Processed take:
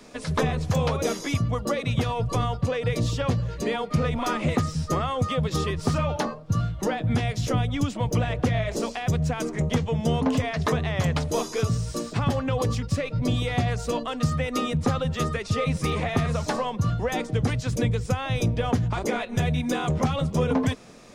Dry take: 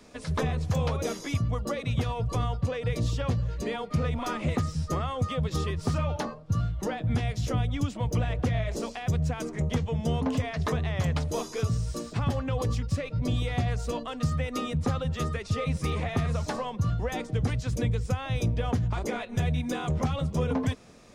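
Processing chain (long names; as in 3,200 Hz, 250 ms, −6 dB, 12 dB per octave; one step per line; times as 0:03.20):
parametric band 60 Hz −8.5 dB 1.3 octaves
level +5.5 dB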